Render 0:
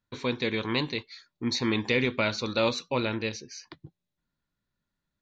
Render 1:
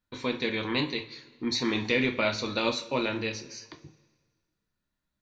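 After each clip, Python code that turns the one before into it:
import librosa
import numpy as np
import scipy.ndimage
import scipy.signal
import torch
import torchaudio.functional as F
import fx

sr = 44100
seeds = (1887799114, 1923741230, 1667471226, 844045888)

y = fx.rev_double_slope(x, sr, seeds[0], early_s=0.29, late_s=1.6, knee_db=-18, drr_db=3.5)
y = y * librosa.db_to_amplitude(-1.5)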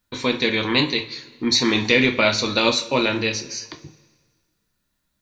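y = fx.high_shelf(x, sr, hz=4200.0, db=7.5)
y = y * librosa.db_to_amplitude(8.0)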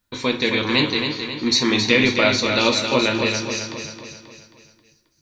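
y = fx.echo_feedback(x, sr, ms=268, feedback_pct=50, wet_db=-6.5)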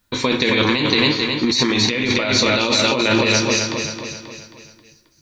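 y = fx.over_compress(x, sr, threshold_db=-22.0, ratio=-1.0)
y = y * librosa.db_to_amplitude(5.0)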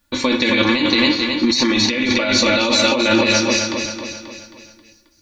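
y = x + 0.76 * np.pad(x, (int(3.5 * sr / 1000.0), 0))[:len(x)]
y = y * librosa.db_to_amplitude(-1.0)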